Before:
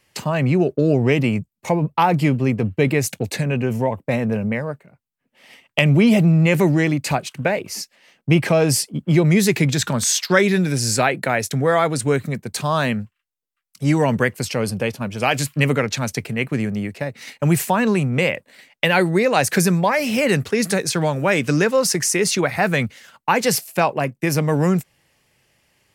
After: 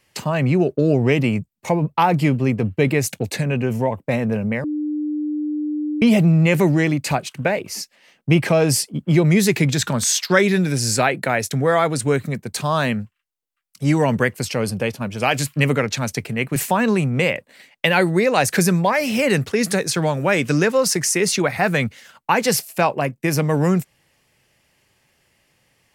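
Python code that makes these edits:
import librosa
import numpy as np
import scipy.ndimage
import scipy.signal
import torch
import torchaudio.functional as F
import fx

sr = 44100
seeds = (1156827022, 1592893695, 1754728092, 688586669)

y = fx.edit(x, sr, fx.bleep(start_s=4.64, length_s=1.38, hz=300.0, db=-20.5),
    fx.cut(start_s=16.56, length_s=0.99), tone=tone)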